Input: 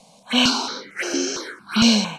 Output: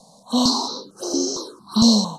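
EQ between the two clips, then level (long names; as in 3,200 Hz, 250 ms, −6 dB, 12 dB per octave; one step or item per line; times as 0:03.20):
Chebyshev band-stop filter 1,100–4,000 Hz, order 3
notch filter 1,400 Hz, Q 16
+2.0 dB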